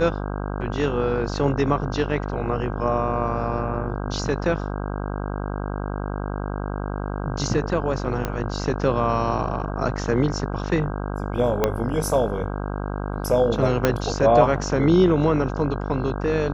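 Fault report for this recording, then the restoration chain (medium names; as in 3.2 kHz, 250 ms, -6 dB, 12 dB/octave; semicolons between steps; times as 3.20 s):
buzz 50 Hz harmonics 32 -28 dBFS
8.25 s: pop -11 dBFS
11.64 s: pop -6 dBFS
13.85 s: pop -4 dBFS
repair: de-click; de-hum 50 Hz, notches 32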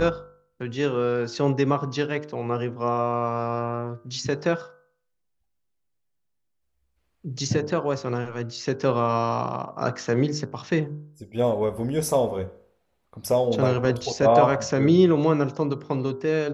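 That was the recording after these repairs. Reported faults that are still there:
11.64 s: pop
13.85 s: pop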